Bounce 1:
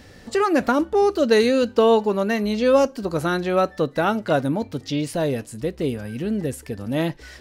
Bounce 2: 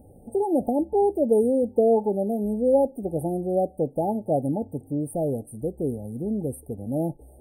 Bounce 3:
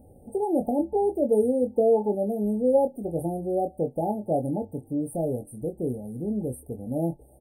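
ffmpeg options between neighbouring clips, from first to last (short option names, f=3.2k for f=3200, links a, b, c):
-af "afftfilt=real='re*(1-between(b*sr/4096,880,8400))':imag='im*(1-between(b*sr/4096,880,8400))':win_size=4096:overlap=0.75,volume=-3dB"
-filter_complex "[0:a]asplit=2[a][b];[b]adelay=24,volume=-6dB[c];[a][c]amix=inputs=2:normalize=0,volume=-2.5dB"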